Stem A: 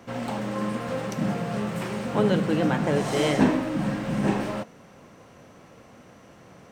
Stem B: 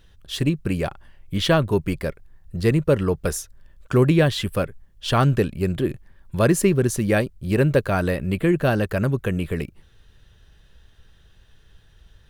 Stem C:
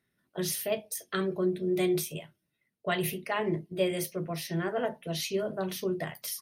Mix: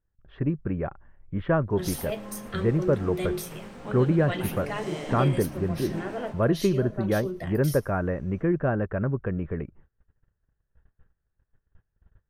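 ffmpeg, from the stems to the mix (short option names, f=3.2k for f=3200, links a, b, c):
-filter_complex "[0:a]adelay=1700,volume=-13.5dB,asplit=2[a][b];[b]volume=-5.5dB[c];[1:a]agate=range=-21dB:threshold=-47dB:ratio=16:detection=peak,lowpass=f=1.7k:w=0.5412,lowpass=f=1.7k:w=1.3066,volume=-5dB[d];[2:a]adelay=1400,volume=-3dB,asplit=2[e][f];[f]volume=-21.5dB[g];[c][g]amix=inputs=2:normalize=0,aecho=0:1:111|222|333|444:1|0.26|0.0676|0.0176[h];[a][d][e][h]amix=inputs=4:normalize=0"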